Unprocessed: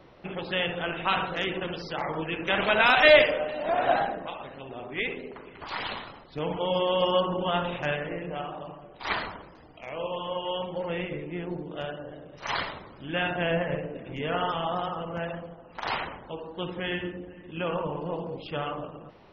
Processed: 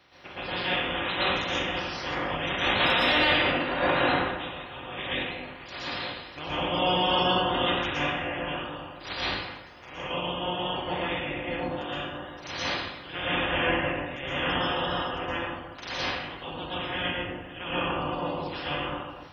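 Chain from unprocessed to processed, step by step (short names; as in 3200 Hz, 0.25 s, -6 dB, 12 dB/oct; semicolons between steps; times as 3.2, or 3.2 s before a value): spectral limiter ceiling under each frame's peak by 22 dB; HPF 47 Hz; notch comb 220 Hz; plate-style reverb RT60 0.73 s, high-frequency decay 0.8×, pre-delay 0.105 s, DRR -8 dB; limiter -7.5 dBFS, peak gain reduction 9 dB; gain -6 dB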